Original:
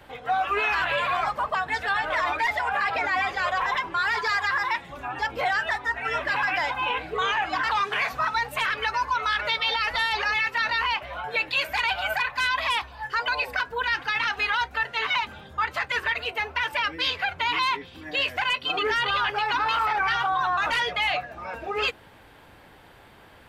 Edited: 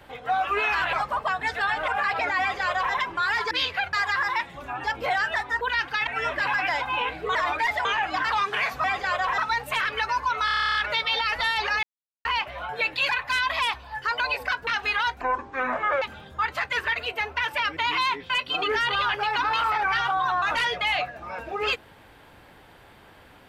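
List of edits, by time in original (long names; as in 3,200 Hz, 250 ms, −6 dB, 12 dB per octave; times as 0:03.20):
0:00.93–0:01.20: remove
0:02.15–0:02.65: move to 0:07.24
0:03.17–0:03.71: duplicate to 0:08.23
0:09.30: stutter 0.03 s, 11 plays
0:10.38–0:10.80: silence
0:11.64–0:12.17: remove
0:13.75–0:14.21: move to 0:05.96
0:14.75–0:15.21: play speed 57%
0:16.96–0:17.38: move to 0:04.28
0:17.91–0:18.45: remove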